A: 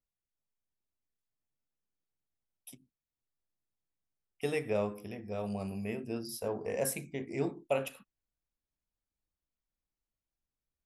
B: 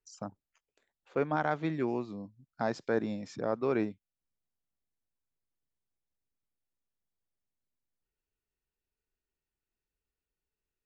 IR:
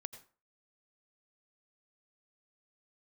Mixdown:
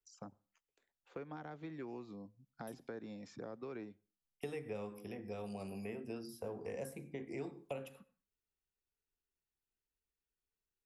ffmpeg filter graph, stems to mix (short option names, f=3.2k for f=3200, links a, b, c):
-filter_complex "[0:a]agate=range=-33dB:threshold=-52dB:ratio=3:detection=peak,volume=-0.5dB,asplit=2[a][b];[b]volume=-8.5dB[c];[1:a]acompressor=threshold=-35dB:ratio=2.5,volume=-6.5dB,asplit=2[d][e];[e]volume=-14.5dB[f];[2:a]atrim=start_sample=2205[g];[c][f]amix=inputs=2:normalize=0[h];[h][g]afir=irnorm=-1:irlink=0[i];[a][d][i]amix=inputs=3:normalize=0,bandreject=f=620:w=12,acrossover=split=260|620|1800[j][k][l][m];[j]acompressor=threshold=-52dB:ratio=4[n];[k]acompressor=threshold=-46dB:ratio=4[o];[l]acompressor=threshold=-55dB:ratio=4[p];[m]acompressor=threshold=-59dB:ratio=4[q];[n][o][p][q]amix=inputs=4:normalize=0"